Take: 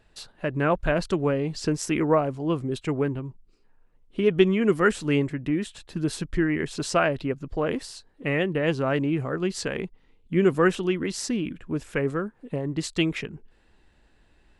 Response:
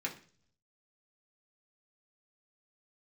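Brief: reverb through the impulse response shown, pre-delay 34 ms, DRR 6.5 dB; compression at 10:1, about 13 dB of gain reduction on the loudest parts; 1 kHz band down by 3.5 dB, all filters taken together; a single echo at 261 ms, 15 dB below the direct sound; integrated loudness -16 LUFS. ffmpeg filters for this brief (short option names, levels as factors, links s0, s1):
-filter_complex "[0:a]equalizer=f=1000:t=o:g=-5,acompressor=threshold=0.0447:ratio=10,aecho=1:1:261:0.178,asplit=2[s0][s1];[1:a]atrim=start_sample=2205,adelay=34[s2];[s1][s2]afir=irnorm=-1:irlink=0,volume=0.355[s3];[s0][s3]amix=inputs=2:normalize=0,volume=6.31"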